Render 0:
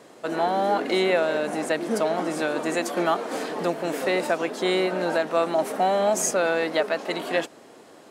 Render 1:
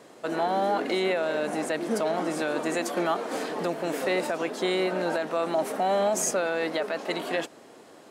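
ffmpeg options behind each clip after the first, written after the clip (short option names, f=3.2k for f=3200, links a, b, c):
-af "alimiter=limit=-15.5dB:level=0:latency=1:release=27,volume=-1.5dB"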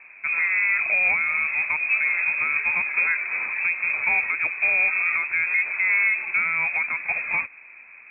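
-af "equalizer=f=300:w=0.64:g=6.5,lowpass=f=2.4k:t=q:w=0.5098,lowpass=f=2.4k:t=q:w=0.6013,lowpass=f=2.4k:t=q:w=0.9,lowpass=f=2.4k:t=q:w=2.563,afreqshift=-2800"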